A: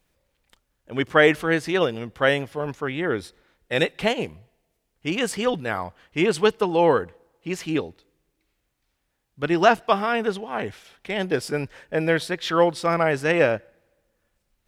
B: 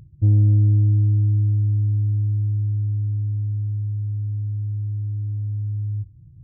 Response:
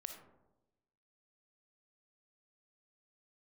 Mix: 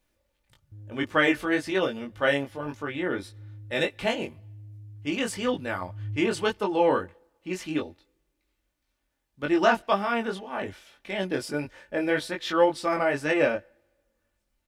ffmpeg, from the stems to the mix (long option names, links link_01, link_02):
-filter_complex "[0:a]flanger=delay=20:depth=2.1:speed=1.8,aecho=1:1:3.4:0.38,volume=-1.5dB,asplit=2[link_01][link_02];[1:a]alimiter=limit=-18.5dB:level=0:latency=1,asubboost=boost=2.5:cutoff=100,asoftclip=type=tanh:threshold=-20dB,adelay=500,volume=-7.5dB,afade=type=in:start_time=5.17:duration=0.49:silence=0.251189[link_03];[link_02]apad=whole_len=305954[link_04];[link_03][link_04]sidechaincompress=threshold=-50dB:ratio=3:attack=16:release=152[link_05];[link_01][link_05]amix=inputs=2:normalize=0"